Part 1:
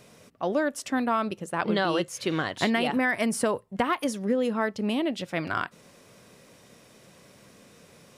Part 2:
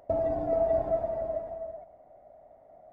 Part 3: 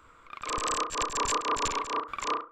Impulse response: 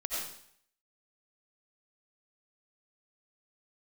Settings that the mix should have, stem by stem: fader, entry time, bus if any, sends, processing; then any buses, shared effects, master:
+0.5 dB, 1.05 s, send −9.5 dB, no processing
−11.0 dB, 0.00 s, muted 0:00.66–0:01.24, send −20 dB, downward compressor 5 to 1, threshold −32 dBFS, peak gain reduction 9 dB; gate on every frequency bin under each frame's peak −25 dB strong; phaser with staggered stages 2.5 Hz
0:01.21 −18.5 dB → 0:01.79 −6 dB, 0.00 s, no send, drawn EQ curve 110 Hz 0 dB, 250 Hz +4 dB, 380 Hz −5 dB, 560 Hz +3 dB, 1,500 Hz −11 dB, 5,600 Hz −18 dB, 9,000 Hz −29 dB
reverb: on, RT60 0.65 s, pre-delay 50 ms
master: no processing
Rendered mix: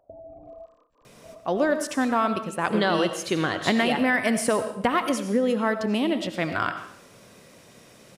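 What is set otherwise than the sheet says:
stem 2: missing phaser with staggered stages 2.5 Hz
stem 3 −18.5 dB → −28.0 dB

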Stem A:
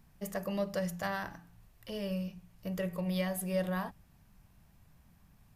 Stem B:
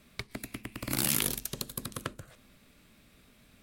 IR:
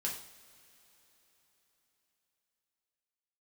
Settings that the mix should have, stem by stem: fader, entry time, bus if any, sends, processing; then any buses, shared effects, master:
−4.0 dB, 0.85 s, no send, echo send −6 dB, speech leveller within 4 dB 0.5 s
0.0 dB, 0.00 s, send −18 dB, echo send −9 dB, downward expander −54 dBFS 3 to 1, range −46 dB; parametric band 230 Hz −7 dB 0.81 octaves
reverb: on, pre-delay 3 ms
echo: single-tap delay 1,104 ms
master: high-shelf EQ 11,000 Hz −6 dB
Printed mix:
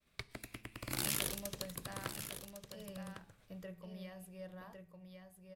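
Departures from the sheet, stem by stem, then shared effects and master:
stem A −4.0 dB → −14.0 dB
stem B 0.0 dB → −6.5 dB

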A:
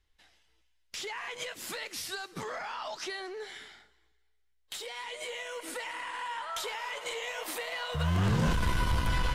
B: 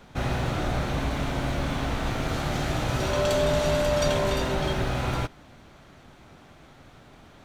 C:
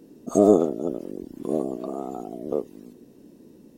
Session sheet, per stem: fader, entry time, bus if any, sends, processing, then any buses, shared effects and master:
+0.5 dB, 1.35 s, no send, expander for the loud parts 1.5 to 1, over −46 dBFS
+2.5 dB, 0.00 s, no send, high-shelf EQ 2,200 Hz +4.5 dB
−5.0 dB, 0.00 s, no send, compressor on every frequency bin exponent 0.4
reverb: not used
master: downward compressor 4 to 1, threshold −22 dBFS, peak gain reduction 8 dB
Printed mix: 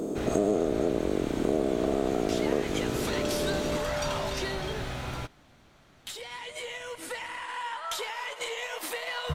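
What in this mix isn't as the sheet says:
stem A +0.5 dB → +8.0 dB
stem B +2.5 dB → −8.5 dB

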